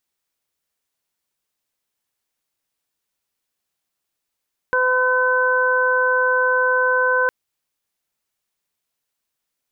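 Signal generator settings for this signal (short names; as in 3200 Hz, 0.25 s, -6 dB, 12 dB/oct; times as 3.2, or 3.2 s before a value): steady additive tone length 2.56 s, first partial 507 Hz, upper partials -1/2.5 dB, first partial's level -20 dB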